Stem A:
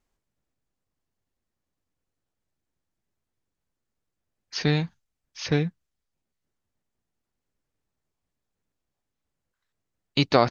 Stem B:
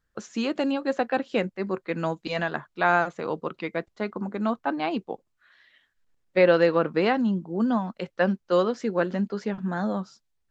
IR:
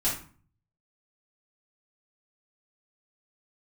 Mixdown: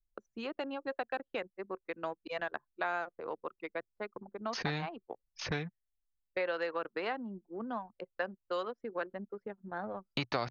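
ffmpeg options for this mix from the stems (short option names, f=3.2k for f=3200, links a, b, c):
-filter_complex "[0:a]volume=0.5dB[a];[1:a]highpass=340,volume=-6dB[b];[a][b]amix=inputs=2:normalize=0,anlmdn=3.98,equalizer=f=120:w=4.1:g=4,acrossover=split=740|1900[c][d][e];[c]acompressor=threshold=-39dB:ratio=4[f];[d]acompressor=threshold=-37dB:ratio=4[g];[e]acompressor=threshold=-43dB:ratio=4[h];[f][g][h]amix=inputs=3:normalize=0"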